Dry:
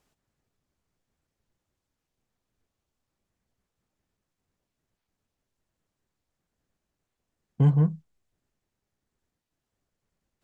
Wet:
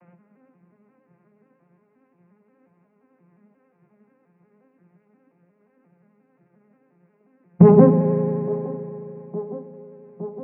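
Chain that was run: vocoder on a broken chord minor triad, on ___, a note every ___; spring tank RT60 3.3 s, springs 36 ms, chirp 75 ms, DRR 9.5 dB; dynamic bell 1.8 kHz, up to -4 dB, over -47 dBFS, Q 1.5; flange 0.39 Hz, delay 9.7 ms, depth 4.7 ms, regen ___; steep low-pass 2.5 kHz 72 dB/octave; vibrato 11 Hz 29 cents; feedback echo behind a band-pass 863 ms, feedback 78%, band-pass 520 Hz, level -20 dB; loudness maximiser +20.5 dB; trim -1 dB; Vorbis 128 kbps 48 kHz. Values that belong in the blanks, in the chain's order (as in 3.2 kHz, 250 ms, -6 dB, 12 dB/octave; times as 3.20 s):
F3, 177 ms, -57%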